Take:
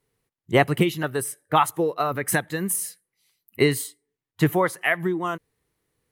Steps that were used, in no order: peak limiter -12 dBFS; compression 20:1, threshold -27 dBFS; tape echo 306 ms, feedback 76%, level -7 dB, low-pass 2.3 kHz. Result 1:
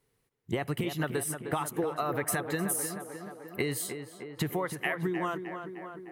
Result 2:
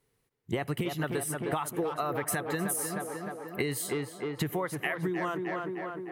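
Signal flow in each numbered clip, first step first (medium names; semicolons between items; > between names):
peak limiter > compression > tape echo; tape echo > peak limiter > compression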